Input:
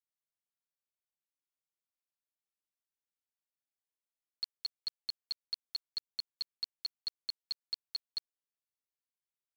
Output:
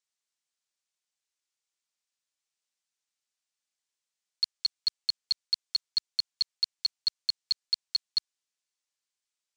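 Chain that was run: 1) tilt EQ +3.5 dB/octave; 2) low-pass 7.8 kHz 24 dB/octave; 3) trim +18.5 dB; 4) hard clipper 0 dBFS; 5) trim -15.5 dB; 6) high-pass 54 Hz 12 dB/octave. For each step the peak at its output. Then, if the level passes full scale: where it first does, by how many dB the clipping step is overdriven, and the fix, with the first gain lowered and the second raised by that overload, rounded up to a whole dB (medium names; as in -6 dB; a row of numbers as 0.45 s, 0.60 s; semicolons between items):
-21.0 dBFS, -20.5 dBFS, -2.0 dBFS, -2.0 dBFS, -17.5 dBFS, -17.5 dBFS; nothing clips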